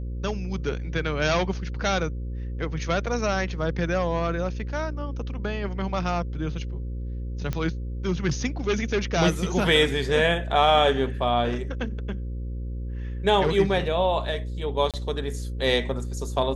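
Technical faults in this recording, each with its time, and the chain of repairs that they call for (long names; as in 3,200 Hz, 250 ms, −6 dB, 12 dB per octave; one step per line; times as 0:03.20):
mains buzz 60 Hz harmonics 9 −31 dBFS
0:07.53: click −15 dBFS
0:14.91–0:14.94: drop-out 27 ms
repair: click removal
hum removal 60 Hz, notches 9
repair the gap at 0:14.91, 27 ms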